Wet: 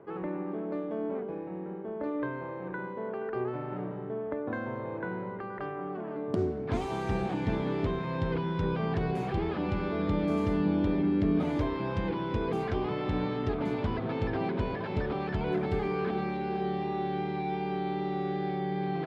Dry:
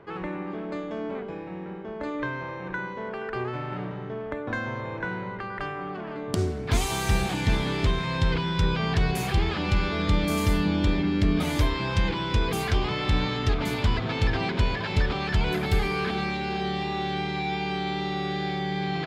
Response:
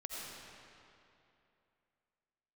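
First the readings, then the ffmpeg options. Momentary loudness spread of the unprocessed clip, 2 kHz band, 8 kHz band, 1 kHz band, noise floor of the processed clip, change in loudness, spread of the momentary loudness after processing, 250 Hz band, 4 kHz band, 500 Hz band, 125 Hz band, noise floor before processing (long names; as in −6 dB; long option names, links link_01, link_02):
9 LU, −10.0 dB, below −20 dB, −4.0 dB, −38 dBFS, −4.5 dB, 9 LU, −1.5 dB, −15.5 dB, −0.5 dB, −6.5 dB, −36 dBFS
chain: -af "bandpass=frequency=380:width_type=q:width=0.65:csg=0"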